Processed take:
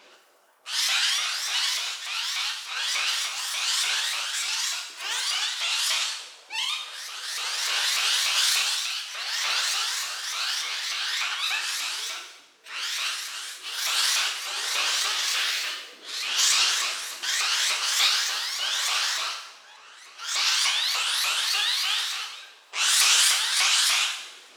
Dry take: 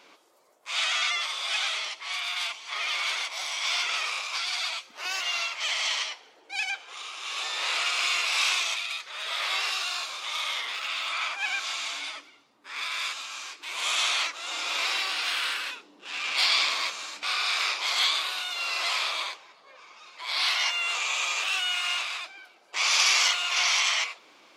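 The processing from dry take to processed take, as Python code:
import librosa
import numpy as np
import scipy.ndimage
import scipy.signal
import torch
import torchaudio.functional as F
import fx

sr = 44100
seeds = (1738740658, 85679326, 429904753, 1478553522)

y = fx.pitch_ramps(x, sr, semitones=9.5, every_ms=295)
y = fx.rev_double_slope(y, sr, seeds[0], early_s=0.84, late_s=2.8, knee_db=-27, drr_db=1.5)
y = y * 10.0 ** (1.5 / 20.0)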